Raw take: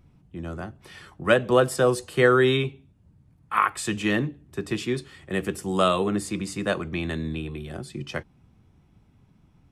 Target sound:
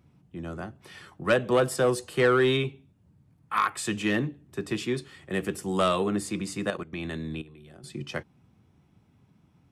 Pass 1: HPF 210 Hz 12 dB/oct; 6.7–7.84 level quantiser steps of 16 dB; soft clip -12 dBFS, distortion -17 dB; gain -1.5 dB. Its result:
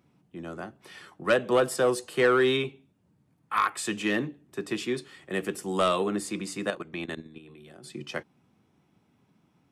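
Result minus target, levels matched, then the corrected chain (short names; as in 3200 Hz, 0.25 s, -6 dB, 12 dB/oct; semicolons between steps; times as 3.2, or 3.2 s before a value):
125 Hz band -6.5 dB
HPF 93 Hz 12 dB/oct; 6.7–7.84 level quantiser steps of 16 dB; soft clip -12 dBFS, distortion -17 dB; gain -1.5 dB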